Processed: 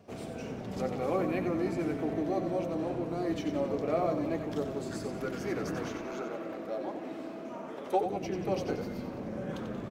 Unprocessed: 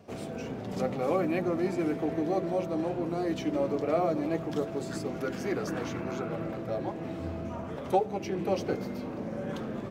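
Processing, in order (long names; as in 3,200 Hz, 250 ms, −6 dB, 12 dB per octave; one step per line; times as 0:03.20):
0:05.86–0:08.01: high-pass filter 240 Hz 24 dB per octave
echo with shifted repeats 91 ms, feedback 50%, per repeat −31 Hz, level −7.5 dB
level −3 dB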